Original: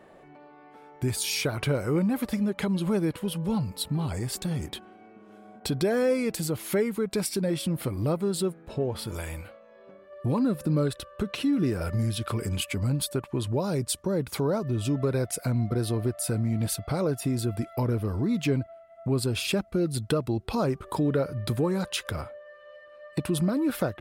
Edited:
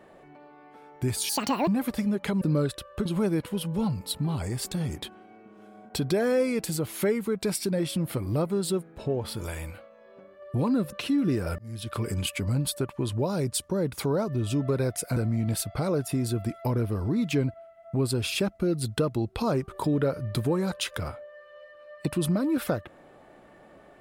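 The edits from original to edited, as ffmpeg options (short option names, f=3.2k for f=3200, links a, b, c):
-filter_complex "[0:a]asplit=8[a][b][c][d][e][f][g][h];[a]atrim=end=1.294[i];[b]atrim=start=1.29:end=2.02,asetpts=PTS-STARTPTS,asetrate=83790,aresample=44100[j];[c]atrim=start=2.016:end=2.762[k];[d]atrim=start=10.628:end=11.272[l];[e]atrim=start=2.758:end=10.632[m];[f]atrim=start=11.268:end=11.93,asetpts=PTS-STARTPTS,afade=t=out:st=0.658:d=0.004:c=hsin[n];[g]atrim=start=11.93:end=15.512,asetpts=PTS-STARTPTS,afade=t=in:d=0.44[o];[h]atrim=start=16.288[p];[i][j]acrossfade=d=0.004:c1=hsin:c2=hsin[q];[q][k]acrossfade=d=0.004:c1=hsin:c2=hsin[r];[r][l]acrossfade=d=0.004:c1=hsin:c2=hsin[s];[s][m]acrossfade=d=0.004:c1=hsin:c2=hsin[t];[n][o]concat=n=2:v=0:a=1[u];[t][u]acrossfade=d=0.004:c1=hsin:c2=hsin[v];[v][p]acrossfade=d=0.004:c1=hsin:c2=hsin"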